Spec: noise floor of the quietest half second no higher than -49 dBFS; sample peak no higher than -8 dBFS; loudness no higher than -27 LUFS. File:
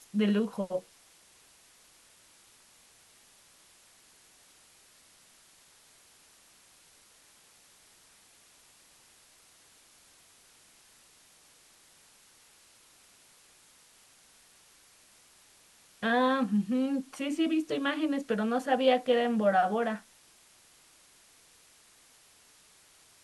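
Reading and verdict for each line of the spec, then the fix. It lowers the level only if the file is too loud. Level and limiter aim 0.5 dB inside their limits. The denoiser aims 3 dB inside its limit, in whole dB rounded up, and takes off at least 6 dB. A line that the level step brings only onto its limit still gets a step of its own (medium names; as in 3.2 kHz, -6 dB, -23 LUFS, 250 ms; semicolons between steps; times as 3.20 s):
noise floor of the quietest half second -60 dBFS: pass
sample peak -13.0 dBFS: pass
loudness -29.0 LUFS: pass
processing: none needed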